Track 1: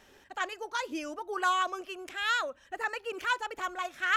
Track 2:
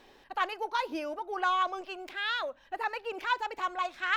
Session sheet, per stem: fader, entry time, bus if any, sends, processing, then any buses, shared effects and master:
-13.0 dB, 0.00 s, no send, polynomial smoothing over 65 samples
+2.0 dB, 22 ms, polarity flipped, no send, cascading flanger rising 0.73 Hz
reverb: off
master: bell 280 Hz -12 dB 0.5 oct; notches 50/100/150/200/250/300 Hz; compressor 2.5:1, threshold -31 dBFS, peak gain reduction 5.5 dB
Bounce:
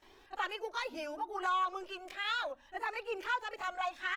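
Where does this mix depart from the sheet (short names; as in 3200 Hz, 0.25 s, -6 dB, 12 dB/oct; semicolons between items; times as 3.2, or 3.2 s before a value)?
stem 1: missing polynomial smoothing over 65 samples; master: missing bell 280 Hz -12 dB 0.5 oct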